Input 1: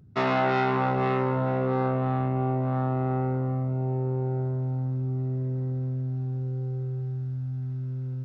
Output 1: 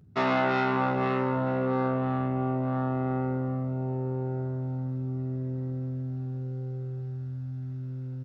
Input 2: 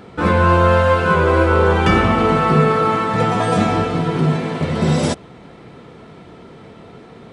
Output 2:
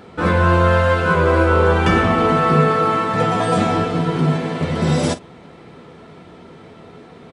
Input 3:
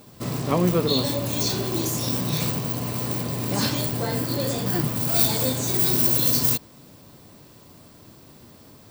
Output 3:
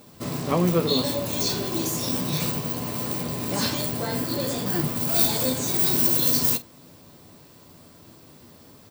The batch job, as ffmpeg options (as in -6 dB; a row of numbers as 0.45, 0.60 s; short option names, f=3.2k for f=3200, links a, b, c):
-af "lowshelf=f=120:g=-3.5,aecho=1:1:12|47:0.316|0.168,volume=-1dB"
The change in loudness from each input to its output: -2.0, -1.0, -0.5 LU